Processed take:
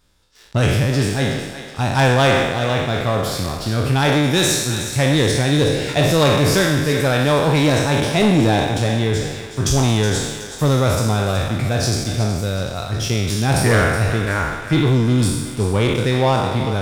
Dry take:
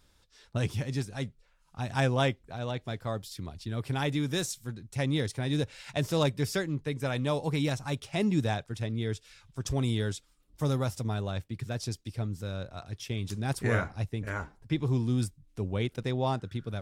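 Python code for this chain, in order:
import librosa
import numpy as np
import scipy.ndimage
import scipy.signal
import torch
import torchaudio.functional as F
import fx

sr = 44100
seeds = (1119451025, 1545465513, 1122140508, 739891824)

p1 = fx.spec_trails(x, sr, decay_s=1.12)
p2 = fx.leveller(p1, sr, passes=2)
p3 = p2 + fx.echo_thinned(p2, sr, ms=371, feedback_pct=47, hz=570.0, wet_db=-10, dry=0)
y = p3 * 10.0 ** (5.5 / 20.0)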